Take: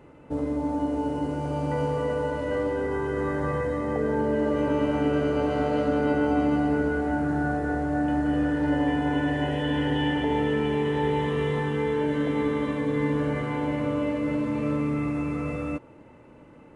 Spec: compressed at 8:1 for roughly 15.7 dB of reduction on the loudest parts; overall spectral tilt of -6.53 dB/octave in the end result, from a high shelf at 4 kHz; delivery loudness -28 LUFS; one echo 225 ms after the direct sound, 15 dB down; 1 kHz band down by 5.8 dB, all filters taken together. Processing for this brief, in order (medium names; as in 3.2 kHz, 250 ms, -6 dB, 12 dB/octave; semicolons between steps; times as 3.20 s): peaking EQ 1 kHz -8 dB; treble shelf 4 kHz +3.5 dB; compression 8:1, threshold -38 dBFS; delay 225 ms -15 dB; trim +12.5 dB